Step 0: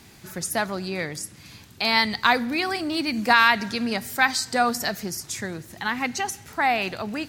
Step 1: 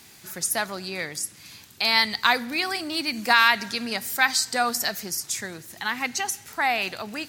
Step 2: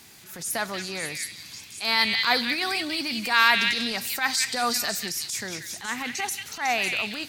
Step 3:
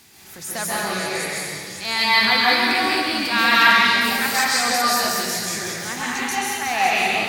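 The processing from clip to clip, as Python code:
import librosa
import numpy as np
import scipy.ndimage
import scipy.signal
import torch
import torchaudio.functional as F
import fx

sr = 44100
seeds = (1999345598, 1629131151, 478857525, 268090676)

y1 = fx.tilt_eq(x, sr, slope=2.0)
y1 = F.gain(torch.from_numpy(y1), -2.0).numpy()
y2 = fx.transient(y1, sr, attack_db=-11, sustain_db=1)
y2 = fx.echo_stepped(y2, sr, ms=184, hz=2800.0, octaves=0.7, feedback_pct=70, wet_db=0)
y3 = fx.rev_plate(y2, sr, seeds[0], rt60_s=2.4, hf_ratio=0.5, predelay_ms=120, drr_db=-7.5)
y3 = F.gain(torch.from_numpy(y3), -1.0).numpy()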